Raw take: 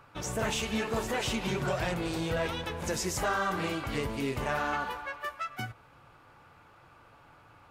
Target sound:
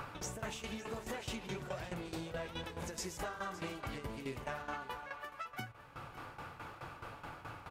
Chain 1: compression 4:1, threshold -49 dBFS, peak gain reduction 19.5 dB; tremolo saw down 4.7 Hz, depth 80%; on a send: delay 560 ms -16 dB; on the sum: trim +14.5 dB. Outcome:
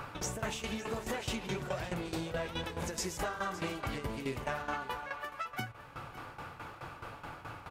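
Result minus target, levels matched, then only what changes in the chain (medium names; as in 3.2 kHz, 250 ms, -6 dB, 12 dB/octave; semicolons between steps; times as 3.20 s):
compression: peak gain reduction -5.5 dB
change: compression 4:1, threshold -56 dBFS, peak gain reduction 24.5 dB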